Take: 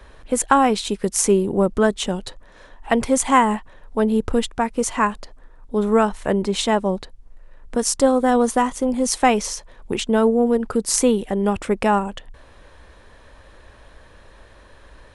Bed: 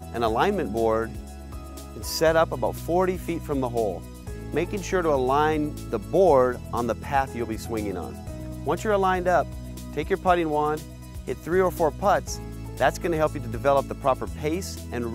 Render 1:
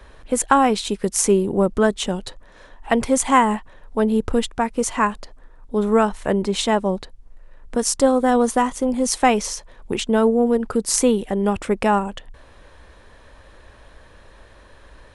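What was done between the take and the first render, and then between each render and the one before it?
no audible change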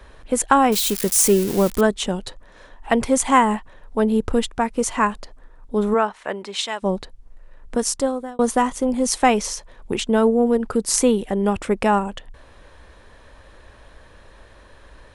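0.72–1.81 s: zero-crossing glitches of -16 dBFS; 5.93–6.82 s: band-pass filter 1 kHz -> 4.5 kHz, Q 0.54; 7.77–8.39 s: fade out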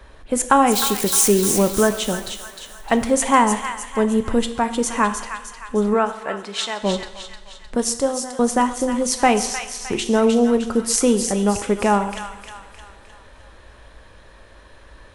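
on a send: feedback echo behind a high-pass 307 ms, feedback 48%, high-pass 1.5 kHz, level -5.5 dB; on the sum: two-slope reverb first 0.84 s, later 3 s, from -18 dB, DRR 9 dB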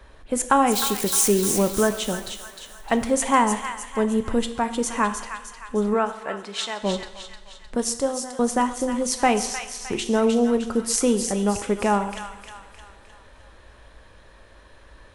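trim -3.5 dB

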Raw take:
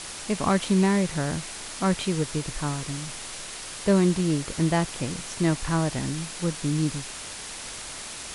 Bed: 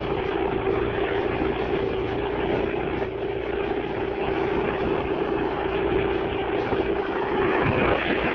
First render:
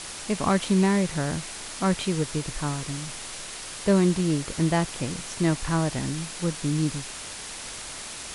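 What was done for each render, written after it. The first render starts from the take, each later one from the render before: no audible change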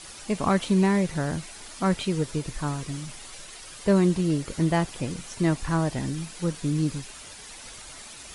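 noise reduction 9 dB, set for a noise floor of -38 dBFS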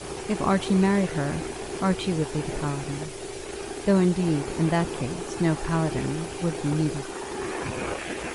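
add bed -9.5 dB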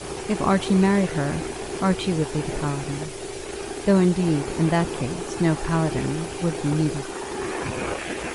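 trim +2.5 dB

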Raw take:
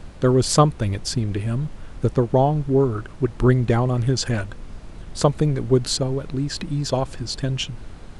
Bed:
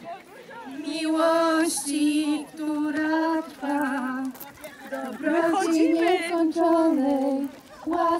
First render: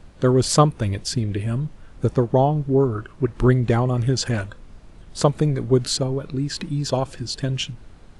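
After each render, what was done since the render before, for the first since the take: noise print and reduce 7 dB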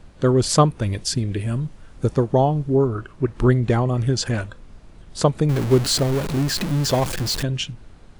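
0.89–2.77 s: treble shelf 5 kHz +5 dB; 5.49–7.43 s: jump at every zero crossing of -22.5 dBFS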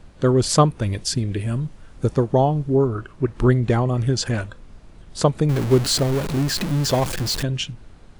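no audible change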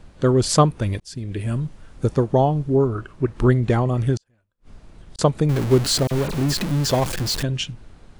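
1.00–1.48 s: fade in; 4.17–5.19 s: inverted gate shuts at -28 dBFS, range -41 dB; 6.07–6.54 s: phase dispersion lows, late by 41 ms, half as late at 2.8 kHz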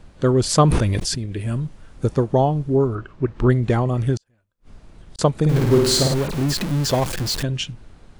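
0.62–1.26 s: decay stretcher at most 22 dB/s; 2.95–3.50 s: distance through air 88 m; 5.38–6.14 s: flutter echo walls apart 8.9 m, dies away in 0.82 s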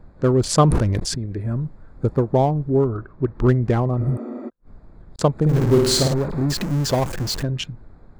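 local Wiener filter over 15 samples; 4.03–4.46 s: spectral replace 220–7900 Hz before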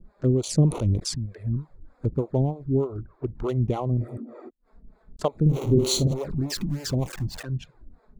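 touch-sensitive flanger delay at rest 5.8 ms, full sweep at -16 dBFS; harmonic tremolo 3.3 Hz, depth 100%, crossover 410 Hz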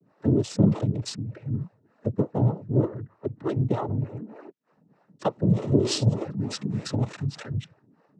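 median filter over 5 samples; noise-vocoded speech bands 12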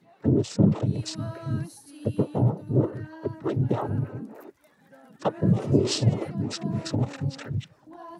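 add bed -20.5 dB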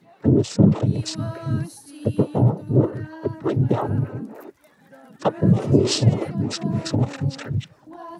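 trim +5 dB; peak limiter -3 dBFS, peak gain reduction 1.5 dB

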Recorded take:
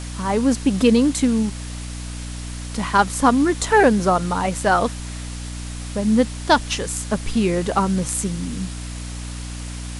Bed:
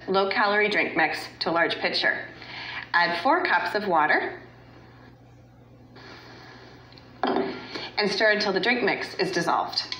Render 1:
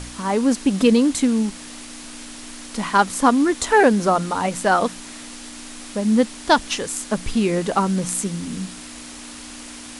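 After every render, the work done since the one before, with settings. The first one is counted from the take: de-hum 60 Hz, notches 3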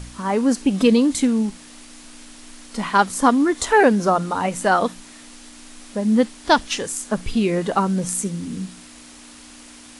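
noise print and reduce 6 dB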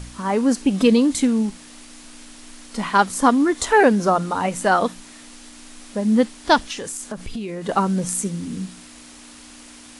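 6.62–7.69 s: compression, threshold -26 dBFS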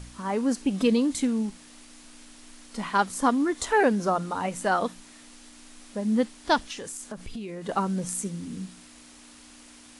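trim -7 dB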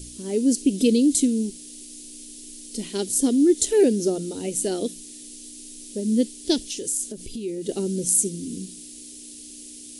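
FFT filter 190 Hz 0 dB, 370 Hz +11 dB, 1.1 kHz -27 dB, 3 kHz +2 dB, 10 kHz +14 dB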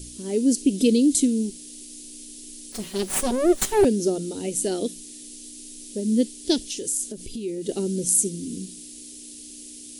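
2.72–3.85 s: comb filter that takes the minimum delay 5.3 ms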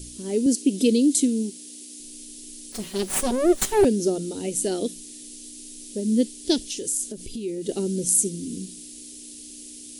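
0.46–2.00 s: high-pass 170 Hz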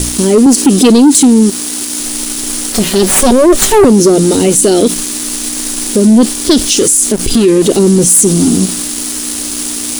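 waveshaping leveller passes 3; loudness maximiser +16 dB

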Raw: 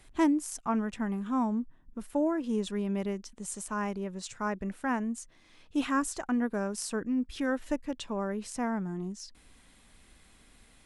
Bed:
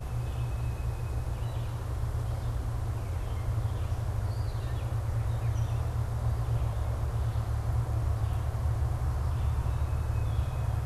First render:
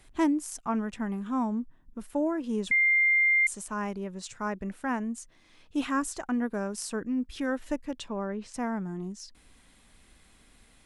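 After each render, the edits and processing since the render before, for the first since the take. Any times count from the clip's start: 2.71–3.47 s: bleep 2.1 kHz -19.5 dBFS; 8.08–8.54 s: distance through air 98 m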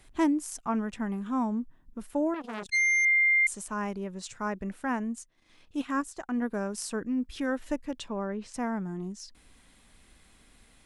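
2.34–3.05 s: transformer saturation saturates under 2 kHz; 5.15–6.46 s: transient shaper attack -4 dB, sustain -11 dB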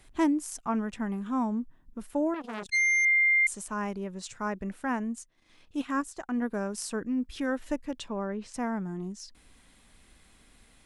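no audible change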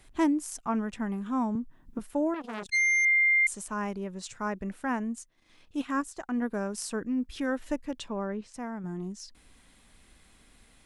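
1.55–1.99 s: three bands compressed up and down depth 100%; 8.41–8.84 s: gain -5.5 dB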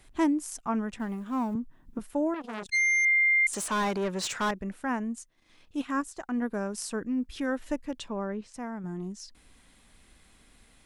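0.99–1.54 s: companding laws mixed up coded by A; 3.53–4.51 s: overdrive pedal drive 24 dB, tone 5.4 kHz, clips at -21 dBFS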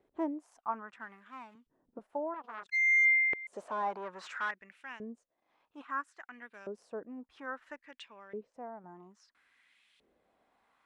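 LFO band-pass saw up 0.6 Hz 420–3200 Hz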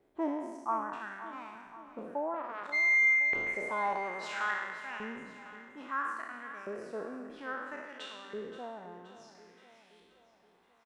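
spectral sustain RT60 1.25 s; feedback delay 525 ms, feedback 53%, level -13.5 dB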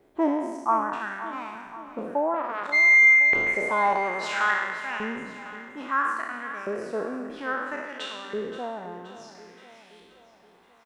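trim +9.5 dB

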